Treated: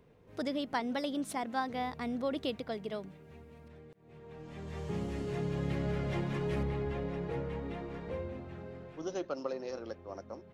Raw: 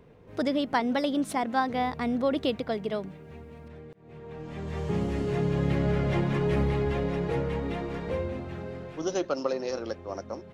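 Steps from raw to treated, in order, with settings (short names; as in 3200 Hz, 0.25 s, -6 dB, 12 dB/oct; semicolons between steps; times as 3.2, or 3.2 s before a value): high shelf 3900 Hz +5 dB, from 6.63 s -5 dB; gain -8 dB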